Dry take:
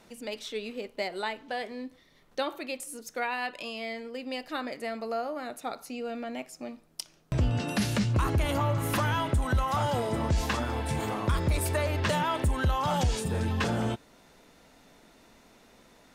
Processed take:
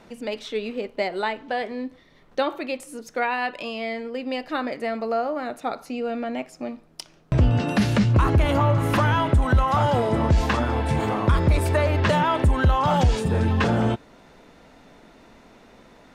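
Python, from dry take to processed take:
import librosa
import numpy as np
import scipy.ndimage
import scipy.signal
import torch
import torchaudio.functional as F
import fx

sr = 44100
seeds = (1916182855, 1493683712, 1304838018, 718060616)

y = fx.lowpass(x, sr, hz=2400.0, slope=6)
y = y * librosa.db_to_amplitude(8.0)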